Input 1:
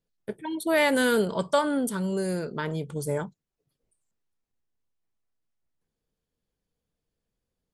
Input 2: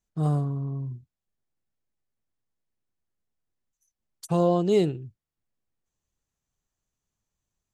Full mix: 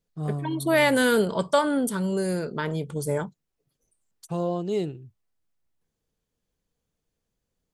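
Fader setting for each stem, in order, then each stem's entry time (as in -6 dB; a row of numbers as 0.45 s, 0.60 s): +2.0 dB, -5.5 dB; 0.00 s, 0.00 s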